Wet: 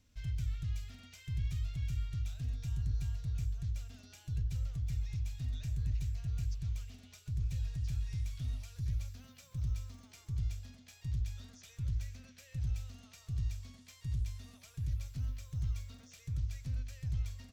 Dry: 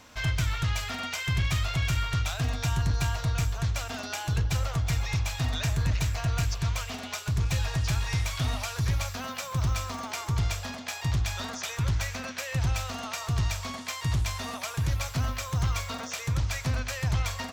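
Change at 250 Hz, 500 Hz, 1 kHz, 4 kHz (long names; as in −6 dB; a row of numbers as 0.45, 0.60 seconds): −13.5 dB, below −25 dB, below −30 dB, −21.0 dB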